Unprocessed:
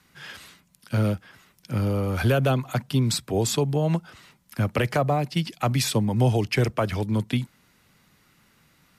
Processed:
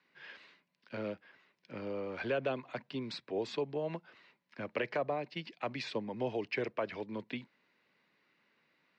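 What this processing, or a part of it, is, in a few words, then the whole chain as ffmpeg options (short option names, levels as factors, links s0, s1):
phone earpiece: -af "highpass=370,equalizer=f=770:t=q:w=4:g=-6,equalizer=f=1300:t=q:w=4:g=-8,equalizer=f=3300:t=q:w=4:g=-7,lowpass=f=3800:w=0.5412,lowpass=f=3800:w=1.3066,volume=0.447"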